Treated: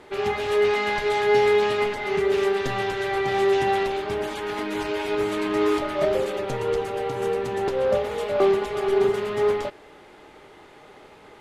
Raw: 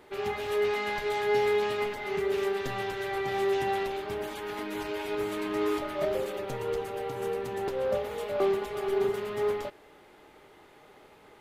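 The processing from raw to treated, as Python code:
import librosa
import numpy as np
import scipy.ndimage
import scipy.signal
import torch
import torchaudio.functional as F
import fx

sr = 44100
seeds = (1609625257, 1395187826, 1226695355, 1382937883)

y = scipy.signal.sosfilt(scipy.signal.butter(2, 9400.0, 'lowpass', fs=sr, output='sos'), x)
y = y * librosa.db_to_amplitude(7.0)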